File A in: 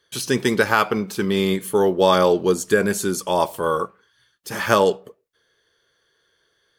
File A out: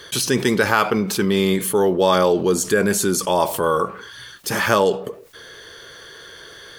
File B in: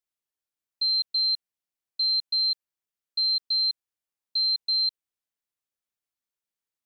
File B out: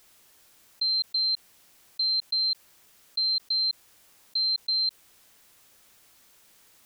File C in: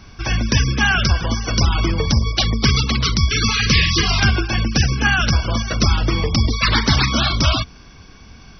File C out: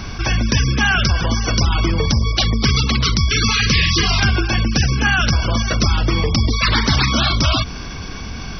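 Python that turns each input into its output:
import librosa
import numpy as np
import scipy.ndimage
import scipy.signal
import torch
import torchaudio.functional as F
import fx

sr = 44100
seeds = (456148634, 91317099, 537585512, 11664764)

y = fx.env_flatten(x, sr, amount_pct=50)
y = y * librosa.db_to_amplitude(-1.5)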